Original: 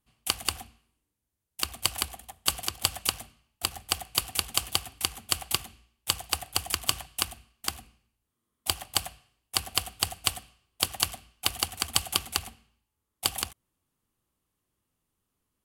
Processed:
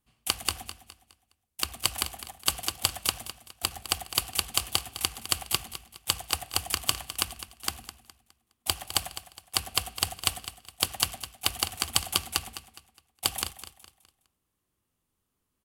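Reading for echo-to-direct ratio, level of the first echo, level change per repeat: -12.5 dB, -13.0 dB, -9.0 dB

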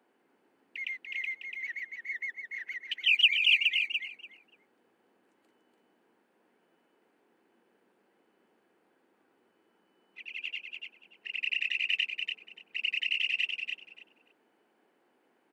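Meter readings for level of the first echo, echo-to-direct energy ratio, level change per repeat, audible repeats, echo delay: -5.0 dB, -5.0 dB, -16.0 dB, 2, 290 ms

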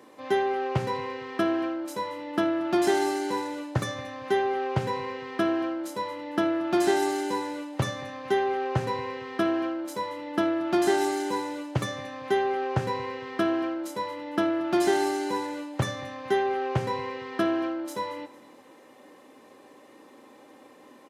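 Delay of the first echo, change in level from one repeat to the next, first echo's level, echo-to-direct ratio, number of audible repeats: 228 ms, -8.0 dB, -19.5 dB, -19.0 dB, 2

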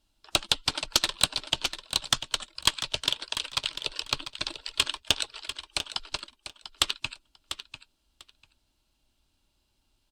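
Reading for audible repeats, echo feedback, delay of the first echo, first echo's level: 2, 16%, 695 ms, -11.0 dB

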